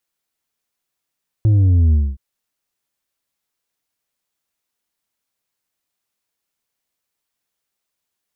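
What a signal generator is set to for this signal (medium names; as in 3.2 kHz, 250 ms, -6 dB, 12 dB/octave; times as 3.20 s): sub drop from 110 Hz, over 0.72 s, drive 5 dB, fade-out 0.24 s, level -10.5 dB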